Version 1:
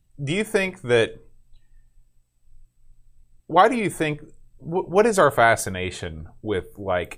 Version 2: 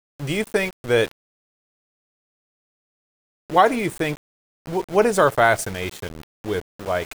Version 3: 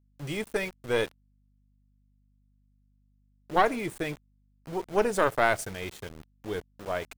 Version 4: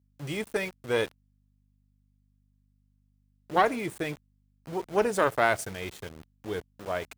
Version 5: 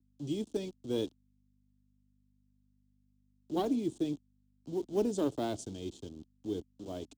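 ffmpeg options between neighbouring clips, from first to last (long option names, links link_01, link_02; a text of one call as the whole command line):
ffmpeg -i in.wav -af "aeval=exprs='val(0)*gte(abs(val(0)),0.0282)':channel_layout=same" out.wav
ffmpeg -i in.wav -af "aeval=exprs='(tanh(1.78*val(0)+0.75)-tanh(0.75))/1.78':channel_layout=same,aeval=exprs='val(0)+0.000891*(sin(2*PI*50*n/s)+sin(2*PI*2*50*n/s)/2+sin(2*PI*3*50*n/s)/3+sin(2*PI*4*50*n/s)/4+sin(2*PI*5*50*n/s)/5)':channel_layout=same,volume=-4dB" out.wav
ffmpeg -i in.wav -af "highpass=46" out.wav
ffmpeg -i in.wav -filter_complex "[0:a]firequalizer=gain_entry='entry(170,0);entry(280,11);entry(490,-6);entry(790,-9);entry(1300,-19);entry(2000,-25);entry(3200,-2);entry(4900,-3);entry(7100,0);entry(13000,-28)':delay=0.05:min_phase=1,acrossover=split=200|440|4400[link_01][link_02][link_03][link_04];[link_03]acrusher=bits=5:mode=log:mix=0:aa=0.000001[link_05];[link_01][link_02][link_05][link_04]amix=inputs=4:normalize=0,volume=-4.5dB" out.wav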